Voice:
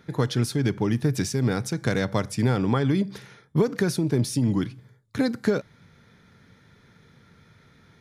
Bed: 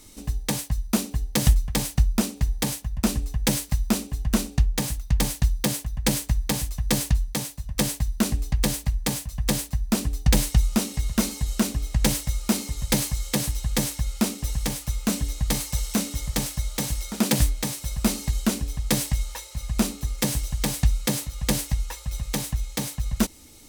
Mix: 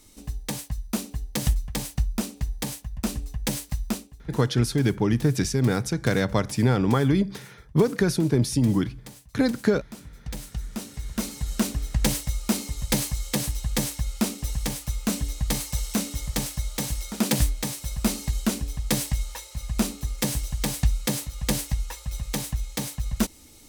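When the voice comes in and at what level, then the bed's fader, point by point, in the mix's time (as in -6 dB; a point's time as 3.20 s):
4.20 s, +1.5 dB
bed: 3.91 s -5 dB
4.16 s -18.5 dB
10.11 s -18.5 dB
11.59 s -1.5 dB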